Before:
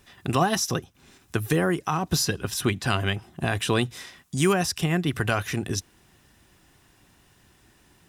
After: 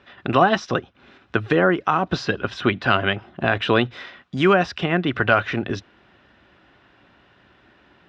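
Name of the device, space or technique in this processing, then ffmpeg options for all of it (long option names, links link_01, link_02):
guitar cabinet: -af "highpass=76,equalizer=frequency=92:width_type=q:width=4:gain=-8,equalizer=frequency=150:width_type=q:width=4:gain=-8,equalizer=frequency=590:width_type=q:width=4:gain=6,equalizer=frequency=1400:width_type=q:width=4:gain=6,lowpass=frequency=3600:width=0.5412,lowpass=frequency=3600:width=1.3066,volume=5dB"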